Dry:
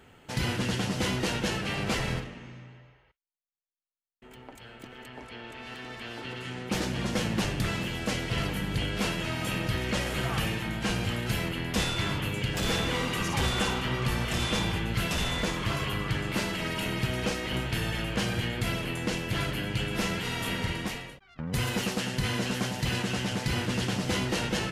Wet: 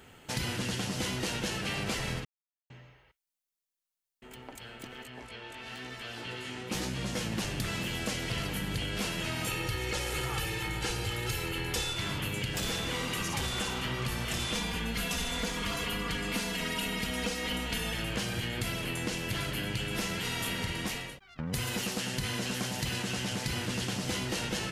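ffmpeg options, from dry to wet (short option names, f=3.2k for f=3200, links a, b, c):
-filter_complex "[0:a]asplit=3[a][b][c];[a]afade=t=out:st=5.02:d=0.02[d];[b]flanger=delay=15:depth=4.3:speed=1,afade=t=in:st=5.02:d=0.02,afade=t=out:st=7.31:d=0.02[e];[c]afade=t=in:st=7.31:d=0.02[f];[d][e][f]amix=inputs=3:normalize=0,asettb=1/sr,asplit=3[g][h][i];[g]atrim=end=9.474[j];[h]atrim=start=9.47:end=11.93,asetpts=PTS-STARTPTS,afade=t=in:d=0.004:c=qsin,afade=t=out:st=2.456:d=0.004:c=qsin,aecho=1:1:2.3:0.73,atrim=end_sample=108486[k];[i]atrim=start=11.926[l];[j][k]acrossfade=d=0.004:c1=hsin:c2=qsin[m];[m][l]acrossfade=d=0.004:c1=qsin:c2=hsin,asettb=1/sr,asplit=3[n][o][p];[n]atrim=end=14.554[q];[o]atrim=start=14.55:end=17.94,asetpts=PTS-STARTPTS,afade=t=in:d=0.004:c=qsin,afade=t=out:st=3.386:d=0.004:c=qsin,aecho=1:1:4.2:0.84,atrim=end_sample=149499[r];[p]atrim=start=17.936[s];[q][r]acrossfade=d=0.004:c1=hsin:c2=qsin[t];[t][s]acrossfade=d=0.004:c1=qsin:c2=hsin,asplit=3[u][v][w];[u]atrim=end=2.25,asetpts=PTS-STARTPTS,afade=t=out:st=2.246:d=0.004:c=hsin[x];[v]atrim=start=2.25:end=2.7,asetpts=PTS-STARTPTS,volume=0[y];[w]atrim=start=2.7,asetpts=PTS-STARTPTS,afade=t=in:d=0.004:c=hsin[z];[x][y][z]concat=n=3:v=0:a=1,highshelf=f=3.7k:g=7.5,acompressor=threshold=-30dB:ratio=6"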